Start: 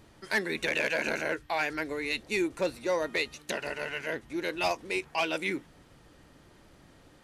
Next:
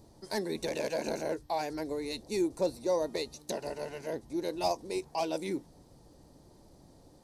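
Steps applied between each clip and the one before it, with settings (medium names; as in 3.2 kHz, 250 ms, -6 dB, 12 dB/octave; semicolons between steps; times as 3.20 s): high-order bell 2 kHz -15 dB; band-stop 7 kHz, Q 23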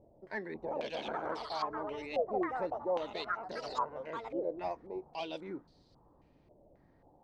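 ever faster or slower copies 490 ms, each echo +6 st, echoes 2; step-sequenced low-pass 3.7 Hz 620–4300 Hz; trim -8.5 dB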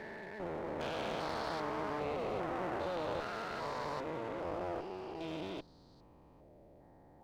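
spectrogram pixelated in time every 400 ms; one-sided clip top -51 dBFS; trim +6 dB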